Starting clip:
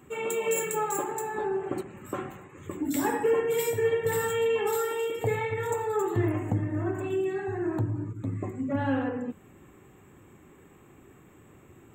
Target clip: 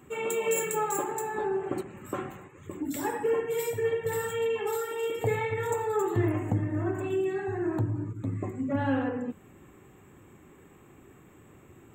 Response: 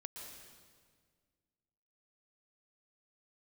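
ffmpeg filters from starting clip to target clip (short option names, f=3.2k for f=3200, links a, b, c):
-filter_complex "[0:a]asplit=3[a][b][c];[a]afade=t=out:st=2.48:d=0.02[d];[b]flanger=delay=0:depth=2.3:regen=-43:speed=1.8:shape=sinusoidal,afade=t=in:st=2.48:d=0.02,afade=t=out:st=5.02:d=0.02[e];[c]afade=t=in:st=5.02:d=0.02[f];[d][e][f]amix=inputs=3:normalize=0"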